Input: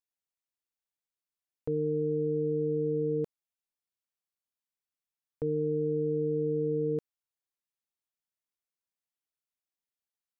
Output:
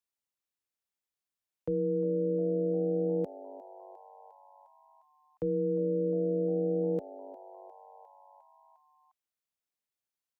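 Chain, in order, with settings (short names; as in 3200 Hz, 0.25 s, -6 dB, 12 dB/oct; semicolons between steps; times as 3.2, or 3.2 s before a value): frequency-shifting echo 0.354 s, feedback 64%, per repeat +96 Hz, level -18.5 dB; frequency shift +24 Hz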